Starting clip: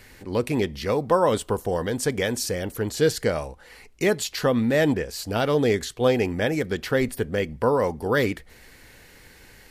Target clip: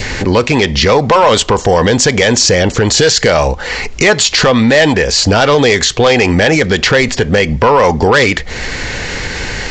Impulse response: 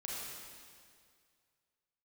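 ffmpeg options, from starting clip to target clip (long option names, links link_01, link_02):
-filter_complex "[0:a]acrossover=split=720[link_01][link_02];[link_01]acompressor=threshold=-31dB:ratio=6[link_03];[link_03][link_02]amix=inputs=2:normalize=0,equalizer=frequency=300:width_type=o:width=0.77:gain=-2.5,aresample=16000,asoftclip=type=tanh:threshold=-22.5dB,aresample=44100,acompressor=mode=upward:threshold=-39dB:ratio=2.5,adynamicequalizer=threshold=0.00355:dfrequency=1400:dqfactor=2.3:tfrequency=1400:tqfactor=2.3:attack=5:release=100:ratio=0.375:range=2:mode=cutabove:tftype=bell,alimiter=level_in=27.5dB:limit=-1dB:release=50:level=0:latency=1,volume=-1dB"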